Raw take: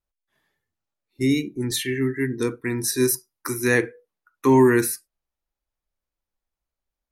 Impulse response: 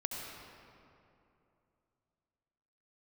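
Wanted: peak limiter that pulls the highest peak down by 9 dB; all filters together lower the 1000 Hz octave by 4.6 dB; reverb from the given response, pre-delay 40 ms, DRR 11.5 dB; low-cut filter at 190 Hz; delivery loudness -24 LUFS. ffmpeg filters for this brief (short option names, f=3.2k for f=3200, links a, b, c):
-filter_complex "[0:a]highpass=190,equalizer=f=1k:t=o:g=-5,alimiter=limit=-16.5dB:level=0:latency=1,asplit=2[a][b];[1:a]atrim=start_sample=2205,adelay=40[c];[b][c]afir=irnorm=-1:irlink=0,volume=-13.5dB[d];[a][d]amix=inputs=2:normalize=0,volume=3dB"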